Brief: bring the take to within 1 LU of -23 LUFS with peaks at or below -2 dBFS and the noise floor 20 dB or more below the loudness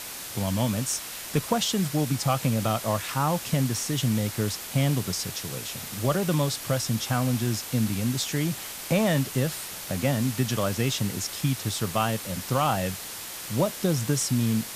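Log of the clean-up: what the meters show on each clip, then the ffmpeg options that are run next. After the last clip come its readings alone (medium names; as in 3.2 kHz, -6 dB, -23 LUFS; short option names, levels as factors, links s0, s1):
noise floor -38 dBFS; noise floor target -47 dBFS; loudness -26.5 LUFS; peak level -11.5 dBFS; loudness target -23.0 LUFS
-> -af "afftdn=nr=9:nf=-38"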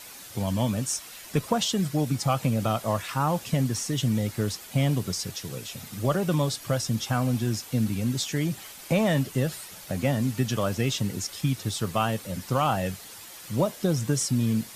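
noise floor -44 dBFS; noise floor target -48 dBFS
-> -af "afftdn=nr=6:nf=-44"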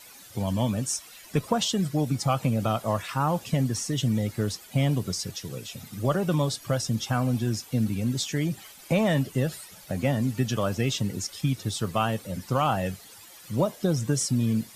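noise floor -49 dBFS; loudness -27.5 LUFS; peak level -12.5 dBFS; loudness target -23.0 LUFS
-> -af "volume=1.68"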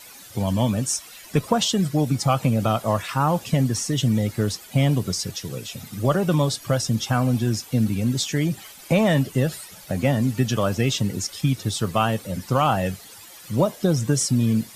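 loudness -23.0 LUFS; peak level -8.0 dBFS; noise floor -44 dBFS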